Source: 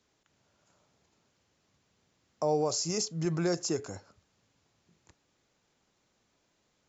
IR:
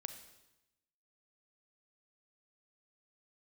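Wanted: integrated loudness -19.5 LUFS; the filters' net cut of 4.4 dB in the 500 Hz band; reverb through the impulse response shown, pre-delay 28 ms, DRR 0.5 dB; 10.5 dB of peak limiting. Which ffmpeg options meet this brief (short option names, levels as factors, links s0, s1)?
-filter_complex "[0:a]equalizer=f=500:t=o:g=-5.5,alimiter=level_in=2:limit=0.0631:level=0:latency=1,volume=0.501,asplit=2[s0][s1];[1:a]atrim=start_sample=2205,adelay=28[s2];[s1][s2]afir=irnorm=-1:irlink=0,volume=1.33[s3];[s0][s3]amix=inputs=2:normalize=0,volume=7.5"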